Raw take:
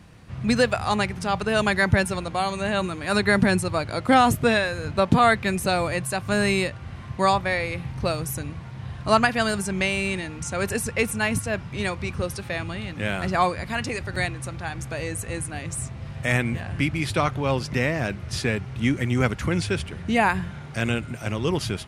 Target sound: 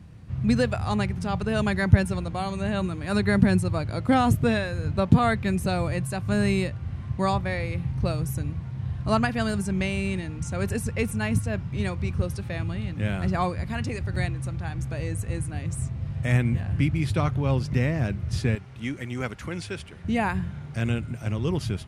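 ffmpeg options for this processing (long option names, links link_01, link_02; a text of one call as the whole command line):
ffmpeg -i in.wav -af "asetnsamples=nb_out_samples=441:pad=0,asendcmd='18.55 equalizer g -2.5;20.04 equalizer g 10',equalizer=frequency=85:width=0.34:gain=13,volume=-7.5dB" out.wav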